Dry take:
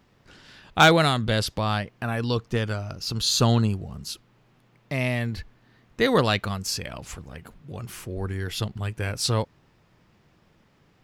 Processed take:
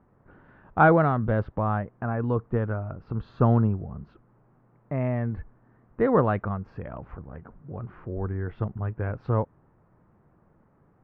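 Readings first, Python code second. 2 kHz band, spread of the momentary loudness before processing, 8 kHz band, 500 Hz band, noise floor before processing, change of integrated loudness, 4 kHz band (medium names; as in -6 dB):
-6.0 dB, 18 LU, under -40 dB, 0.0 dB, -62 dBFS, -1.5 dB, under -30 dB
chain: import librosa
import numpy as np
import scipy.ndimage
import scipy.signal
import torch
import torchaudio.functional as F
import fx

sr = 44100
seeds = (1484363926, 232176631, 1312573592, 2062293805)

y = scipy.signal.sosfilt(scipy.signal.butter(4, 1400.0, 'lowpass', fs=sr, output='sos'), x)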